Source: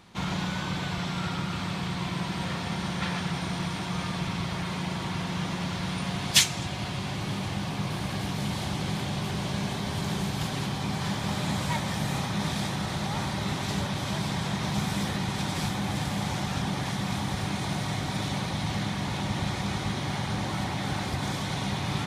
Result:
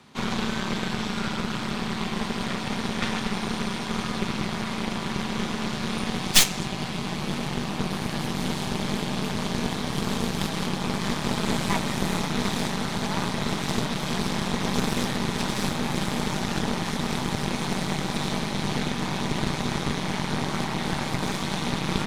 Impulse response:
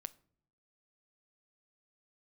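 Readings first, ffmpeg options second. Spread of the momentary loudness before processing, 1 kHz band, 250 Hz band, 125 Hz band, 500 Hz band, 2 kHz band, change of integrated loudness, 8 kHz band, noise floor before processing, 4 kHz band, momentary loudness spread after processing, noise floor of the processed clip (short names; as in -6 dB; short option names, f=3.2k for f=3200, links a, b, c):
2 LU, +2.5 dB, +4.0 dB, -1.0 dB, +5.5 dB, +3.0 dB, +2.5 dB, +3.0 dB, -33 dBFS, +2.5 dB, 3 LU, -31 dBFS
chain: -filter_complex "[0:a]asplit=2[a][b];[1:a]atrim=start_sample=2205[c];[b][c]afir=irnorm=-1:irlink=0,volume=1.5dB[d];[a][d]amix=inputs=2:normalize=0,afreqshift=41,aeval=exprs='0.944*(cos(1*acos(clip(val(0)/0.944,-1,1)))-cos(1*PI/2))+0.211*(cos(8*acos(clip(val(0)/0.944,-1,1)))-cos(8*PI/2))':c=same,volume=-3.5dB"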